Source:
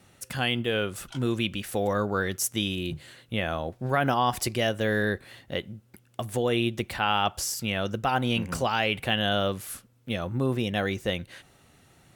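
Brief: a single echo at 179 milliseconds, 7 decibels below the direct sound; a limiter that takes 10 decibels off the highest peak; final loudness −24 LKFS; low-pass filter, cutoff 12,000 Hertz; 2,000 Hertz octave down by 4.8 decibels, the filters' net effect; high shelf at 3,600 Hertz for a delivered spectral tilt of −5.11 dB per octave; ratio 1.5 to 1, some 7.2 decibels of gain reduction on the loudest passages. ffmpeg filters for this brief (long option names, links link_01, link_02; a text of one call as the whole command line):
ffmpeg -i in.wav -af "lowpass=12000,equalizer=frequency=2000:width_type=o:gain=-4,highshelf=frequency=3600:gain=-9,acompressor=threshold=-43dB:ratio=1.5,alimiter=level_in=7dB:limit=-24dB:level=0:latency=1,volume=-7dB,aecho=1:1:179:0.447,volume=17dB" out.wav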